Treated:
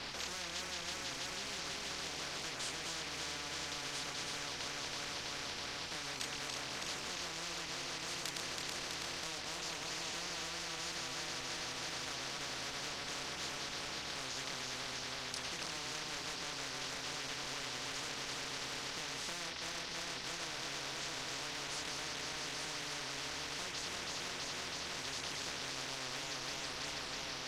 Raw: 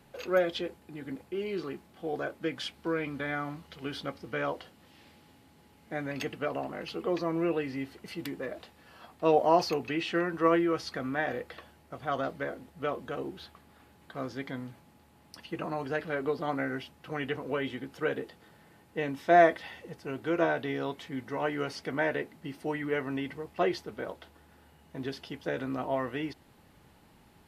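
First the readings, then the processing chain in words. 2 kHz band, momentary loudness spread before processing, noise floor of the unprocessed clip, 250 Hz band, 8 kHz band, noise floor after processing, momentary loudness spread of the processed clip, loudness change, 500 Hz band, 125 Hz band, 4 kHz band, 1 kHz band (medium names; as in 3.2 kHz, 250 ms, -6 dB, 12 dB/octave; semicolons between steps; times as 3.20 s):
-5.0 dB, 15 LU, -60 dBFS, -17.0 dB, no reading, -44 dBFS, 1 LU, -7.5 dB, -18.5 dB, -10.5 dB, +6.0 dB, -11.5 dB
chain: backward echo that repeats 163 ms, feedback 81%, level -5.5 dB; companded quantiser 6-bit; compression, threshold -34 dBFS, peak gain reduction 18 dB; chorus voices 6, 0.31 Hz, delay 27 ms, depth 4.1 ms; resonant low-pass 4.6 kHz, resonance Q 4.9; spectrum-flattening compressor 10:1; trim +1.5 dB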